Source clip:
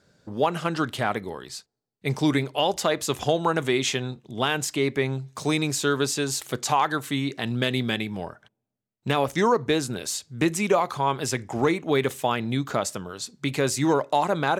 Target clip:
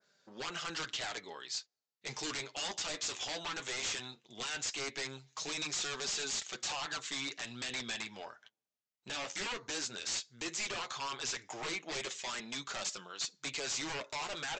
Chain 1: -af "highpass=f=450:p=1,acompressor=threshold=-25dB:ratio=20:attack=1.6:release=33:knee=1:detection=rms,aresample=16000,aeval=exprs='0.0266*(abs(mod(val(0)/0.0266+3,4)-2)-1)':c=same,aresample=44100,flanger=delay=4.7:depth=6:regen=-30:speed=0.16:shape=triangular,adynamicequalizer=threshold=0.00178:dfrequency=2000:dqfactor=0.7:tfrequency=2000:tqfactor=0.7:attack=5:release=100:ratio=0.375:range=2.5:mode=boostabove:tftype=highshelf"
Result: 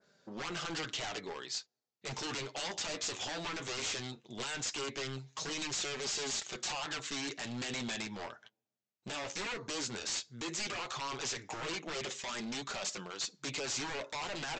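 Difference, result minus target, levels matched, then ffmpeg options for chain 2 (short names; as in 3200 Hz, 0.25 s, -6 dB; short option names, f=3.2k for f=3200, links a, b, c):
500 Hz band +3.0 dB
-af "highpass=f=1.5k:p=1,acompressor=threshold=-25dB:ratio=20:attack=1.6:release=33:knee=1:detection=rms,aresample=16000,aeval=exprs='0.0266*(abs(mod(val(0)/0.0266+3,4)-2)-1)':c=same,aresample=44100,flanger=delay=4.7:depth=6:regen=-30:speed=0.16:shape=triangular,adynamicequalizer=threshold=0.00178:dfrequency=2000:dqfactor=0.7:tfrequency=2000:tqfactor=0.7:attack=5:release=100:ratio=0.375:range=2.5:mode=boostabove:tftype=highshelf"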